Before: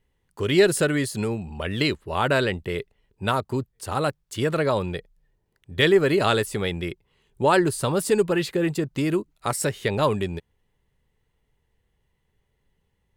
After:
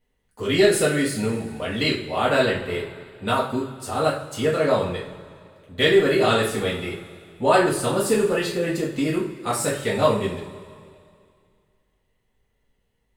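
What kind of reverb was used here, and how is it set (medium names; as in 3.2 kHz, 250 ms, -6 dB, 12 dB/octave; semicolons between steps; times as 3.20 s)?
two-slope reverb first 0.4 s, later 2.3 s, from -18 dB, DRR -6.5 dB; trim -5.5 dB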